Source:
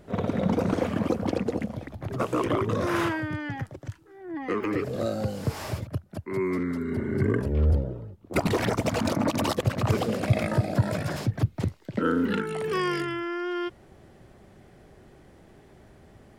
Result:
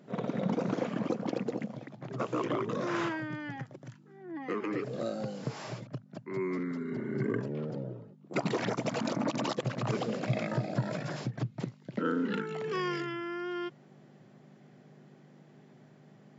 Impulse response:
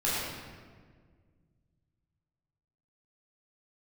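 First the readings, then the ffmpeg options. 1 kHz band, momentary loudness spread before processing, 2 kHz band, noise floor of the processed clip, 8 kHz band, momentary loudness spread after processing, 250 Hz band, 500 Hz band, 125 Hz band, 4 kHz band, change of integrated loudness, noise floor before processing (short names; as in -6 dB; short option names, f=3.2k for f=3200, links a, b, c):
-6.0 dB, 10 LU, -6.0 dB, -58 dBFS, -8.0 dB, 10 LU, -6.0 dB, -6.0 dB, -9.0 dB, -6.0 dB, -7.0 dB, -54 dBFS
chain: -af "aeval=exprs='val(0)+0.00708*(sin(2*PI*50*n/s)+sin(2*PI*2*50*n/s)/2+sin(2*PI*3*50*n/s)/3+sin(2*PI*4*50*n/s)/4+sin(2*PI*5*50*n/s)/5)':c=same,afftfilt=real='re*between(b*sr/4096,110,7600)':imag='im*between(b*sr/4096,110,7600)':win_size=4096:overlap=0.75,volume=-6dB"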